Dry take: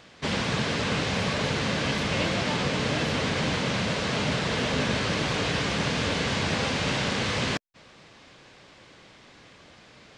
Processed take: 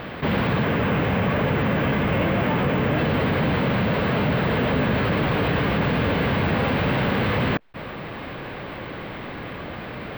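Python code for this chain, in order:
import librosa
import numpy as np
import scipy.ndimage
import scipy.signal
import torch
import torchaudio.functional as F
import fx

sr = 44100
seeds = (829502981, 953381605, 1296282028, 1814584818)

y = fx.peak_eq(x, sr, hz=4200.0, db=-7.0, octaves=0.45, at=(0.63, 2.98))
y = 10.0 ** (-20.0 / 20.0) * np.tanh(y / 10.0 ** (-20.0 / 20.0))
y = fx.air_absorb(y, sr, metres=480.0)
y = np.repeat(scipy.signal.resample_poly(y, 1, 2), 2)[:len(y)]
y = fx.env_flatten(y, sr, amount_pct=50)
y = F.gain(torch.from_numpy(y), 7.5).numpy()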